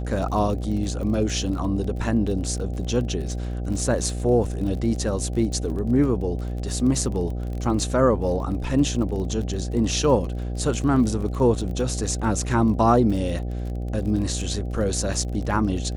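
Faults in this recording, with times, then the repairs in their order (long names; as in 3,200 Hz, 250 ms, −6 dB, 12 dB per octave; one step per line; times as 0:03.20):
mains buzz 60 Hz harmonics 13 −28 dBFS
surface crackle 30 per second −31 dBFS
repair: click removal
hum removal 60 Hz, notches 13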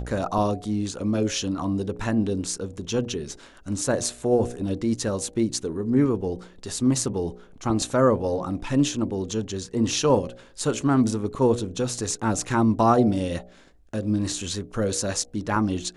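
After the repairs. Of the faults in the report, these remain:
none of them is left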